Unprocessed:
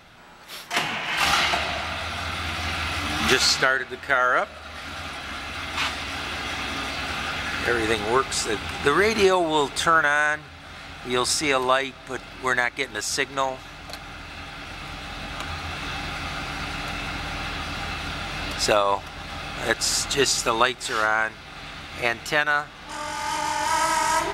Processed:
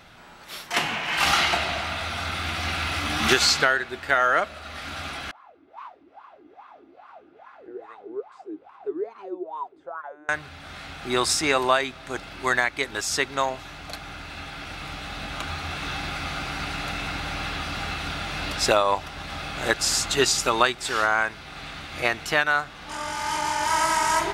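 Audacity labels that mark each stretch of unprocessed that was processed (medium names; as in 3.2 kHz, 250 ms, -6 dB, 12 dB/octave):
5.310000	10.290000	wah-wah 2.4 Hz 310–1100 Hz, Q 16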